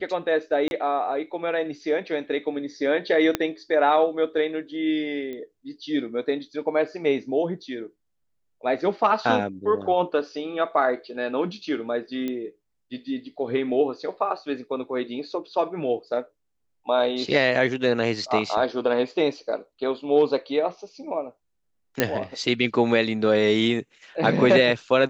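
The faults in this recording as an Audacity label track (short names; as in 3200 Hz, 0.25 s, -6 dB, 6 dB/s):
0.680000	0.710000	gap 31 ms
3.350000	3.350000	pop -7 dBFS
5.330000	5.330000	pop -24 dBFS
12.280000	12.280000	pop -17 dBFS
22.000000	22.000000	pop -4 dBFS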